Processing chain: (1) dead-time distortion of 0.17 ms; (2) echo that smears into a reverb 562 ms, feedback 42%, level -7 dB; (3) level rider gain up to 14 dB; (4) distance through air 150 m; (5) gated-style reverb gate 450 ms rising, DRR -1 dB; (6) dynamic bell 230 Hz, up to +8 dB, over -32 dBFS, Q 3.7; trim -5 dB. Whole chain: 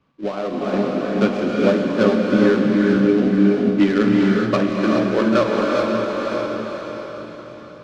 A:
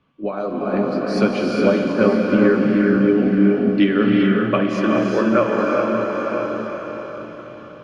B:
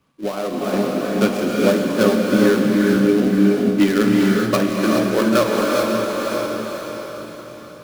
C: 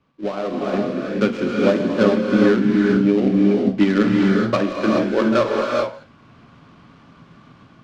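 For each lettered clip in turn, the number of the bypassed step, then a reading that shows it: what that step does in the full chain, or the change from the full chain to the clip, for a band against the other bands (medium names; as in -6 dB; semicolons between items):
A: 1, distortion -12 dB; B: 4, 4 kHz band +3.5 dB; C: 2, momentary loudness spread change -6 LU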